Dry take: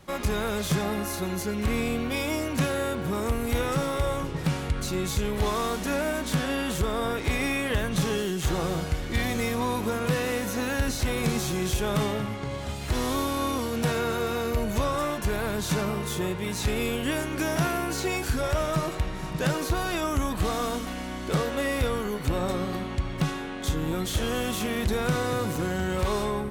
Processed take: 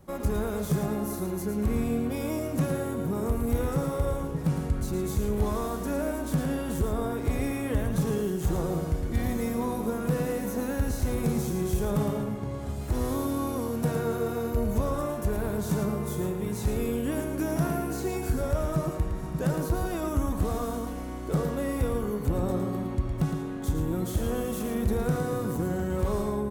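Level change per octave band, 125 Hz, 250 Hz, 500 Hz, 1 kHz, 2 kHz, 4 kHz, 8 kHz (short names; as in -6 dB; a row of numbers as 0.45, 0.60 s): +0.5, +0.5, -1.5, -5.0, -10.0, -12.5, -6.0 dB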